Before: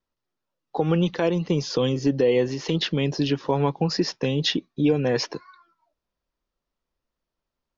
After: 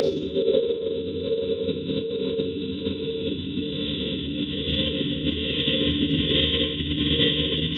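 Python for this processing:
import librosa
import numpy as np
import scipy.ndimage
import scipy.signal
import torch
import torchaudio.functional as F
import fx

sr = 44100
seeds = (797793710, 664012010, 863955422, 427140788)

p1 = fx.double_bandpass(x, sr, hz=1300.0, octaves=3.0)
p2 = fx.echo_multitap(p1, sr, ms=(96, 109, 195, 766, 799, 863), db=(-16.5, -15.0, -17.0, -19.5, -17.0, -17.0))
p3 = fx.dynamic_eq(p2, sr, hz=830.0, q=1.5, threshold_db=-42.0, ratio=4.0, max_db=4)
p4 = fx.paulstretch(p3, sr, seeds[0], factor=10.0, window_s=1.0, from_s=3.78)
p5 = fx.level_steps(p4, sr, step_db=16)
p6 = p4 + (p5 * 10.0 ** (-0.5 / 20.0))
p7 = fx.rev_schroeder(p6, sr, rt60_s=0.56, comb_ms=28, drr_db=6.0)
p8 = fx.rotary(p7, sr, hz=1.2)
p9 = fx.pitch_keep_formants(p8, sr, semitones=-10.5)
y = p9 * 10.0 ** (8.0 / 20.0)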